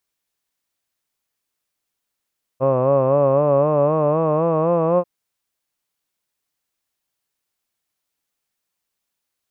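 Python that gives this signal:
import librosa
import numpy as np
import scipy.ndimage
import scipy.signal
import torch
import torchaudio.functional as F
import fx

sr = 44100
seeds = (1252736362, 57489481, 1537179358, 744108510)

y = fx.formant_vowel(sr, seeds[0], length_s=2.44, hz=129.0, glide_st=5.0, vibrato_hz=3.9, vibrato_st=0.8, f1_hz=560.0, f2_hz=1100.0, f3_hz=2600.0)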